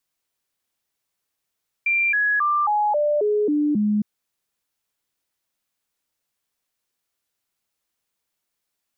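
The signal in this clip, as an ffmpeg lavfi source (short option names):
-f lavfi -i "aevalsrc='0.141*clip(min(mod(t,0.27),0.27-mod(t,0.27))/0.005,0,1)*sin(2*PI*2370*pow(2,-floor(t/0.27)/2)*mod(t,0.27))':d=2.16:s=44100"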